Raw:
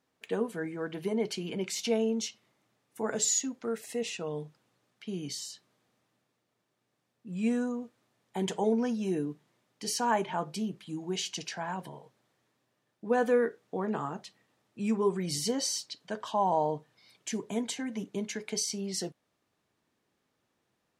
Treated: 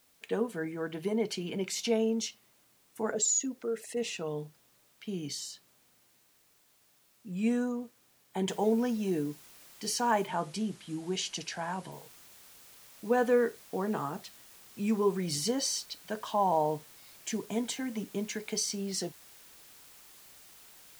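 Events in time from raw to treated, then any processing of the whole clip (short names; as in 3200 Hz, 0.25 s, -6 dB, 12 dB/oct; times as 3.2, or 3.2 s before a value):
3.11–3.97 formant sharpening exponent 1.5
8.49 noise floor step -67 dB -55 dB
10.27–11.92 steep low-pass 11000 Hz 48 dB/oct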